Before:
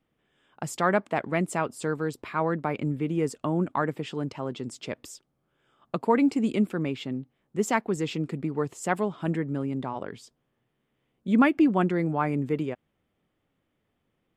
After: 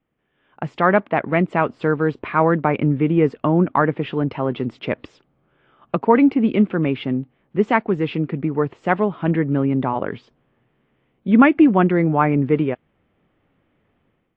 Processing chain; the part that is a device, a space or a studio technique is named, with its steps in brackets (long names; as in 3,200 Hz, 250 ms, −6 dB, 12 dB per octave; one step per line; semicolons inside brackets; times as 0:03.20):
action camera in a waterproof case (low-pass filter 2,900 Hz 24 dB per octave; automatic gain control gain up to 11.5 dB; AAC 48 kbit/s 24,000 Hz)